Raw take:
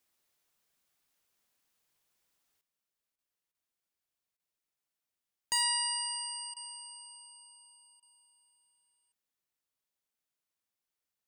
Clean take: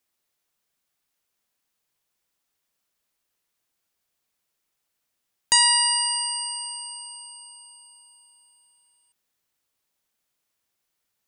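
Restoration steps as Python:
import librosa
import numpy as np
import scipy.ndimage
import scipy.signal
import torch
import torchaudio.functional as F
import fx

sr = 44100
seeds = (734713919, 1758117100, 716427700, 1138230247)

y = fx.fix_declip(x, sr, threshold_db=-21.5)
y = fx.fix_interpolate(y, sr, at_s=(3.16, 3.52, 4.37, 6.54, 8.0), length_ms=24.0)
y = fx.fix_level(y, sr, at_s=2.61, step_db=11.5)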